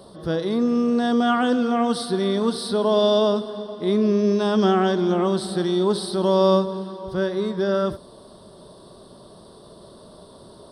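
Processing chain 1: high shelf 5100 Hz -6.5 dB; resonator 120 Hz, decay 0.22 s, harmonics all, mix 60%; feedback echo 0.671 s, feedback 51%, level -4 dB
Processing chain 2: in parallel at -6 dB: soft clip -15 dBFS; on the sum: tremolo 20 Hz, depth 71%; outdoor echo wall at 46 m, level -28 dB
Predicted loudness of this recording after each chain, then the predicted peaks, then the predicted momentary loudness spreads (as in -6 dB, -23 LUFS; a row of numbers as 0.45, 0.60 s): -24.0, -21.5 LUFS; -10.0, -6.0 dBFS; 16, 8 LU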